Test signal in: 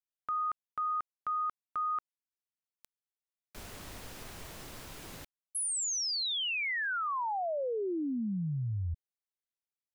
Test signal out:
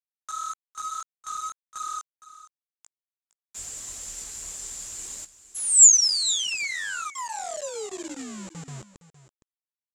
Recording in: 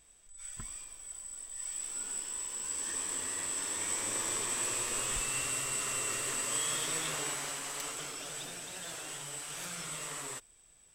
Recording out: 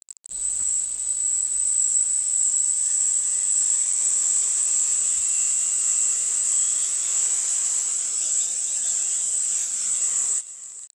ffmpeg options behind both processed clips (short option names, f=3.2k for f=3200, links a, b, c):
-af "aemphasis=mode=production:type=75kf,afftfilt=real='re*gte(hypot(re,im),0.0112)':imag='im*gte(hypot(re,im),0.0112)':win_size=1024:overlap=0.75,equalizer=f=120:t=o:w=2.7:g=-8.5,acompressor=threshold=-40dB:ratio=1.5:attack=0.15:release=23:knee=1:detection=peak,alimiter=level_in=3dB:limit=-24dB:level=0:latency=1:release=256,volume=-3dB,acompressor=mode=upward:threshold=-43dB:ratio=2.5:attack=3.5:release=146:knee=2.83:detection=peak,flanger=delay=17:depth=6.3:speed=1.7,aeval=exprs='sgn(val(0))*max(abs(val(0))-0.00133,0)':c=same,afreqshift=30,acrusher=bits=7:mix=0:aa=0.000001,lowpass=f=7.3k:t=q:w=9.1,aecho=1:1:463:0.168,volume=6dB"